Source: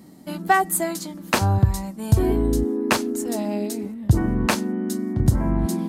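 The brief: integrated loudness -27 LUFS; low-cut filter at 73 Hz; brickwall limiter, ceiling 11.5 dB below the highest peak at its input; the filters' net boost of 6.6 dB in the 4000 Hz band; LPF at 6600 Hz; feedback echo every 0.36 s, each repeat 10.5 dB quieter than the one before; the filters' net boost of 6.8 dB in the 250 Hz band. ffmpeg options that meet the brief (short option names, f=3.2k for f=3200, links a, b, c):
-af "highpass=73,lowpass=6.6k,equalizer=f=250:t=o:g=8.5,equalizer=f=4k:t=o:g=9,alimiter=limit=-13dB:level=0:latency=1,aecho=1:1:360|720|1080:0.299|0.0896|0.0269,volume=-4.5dB"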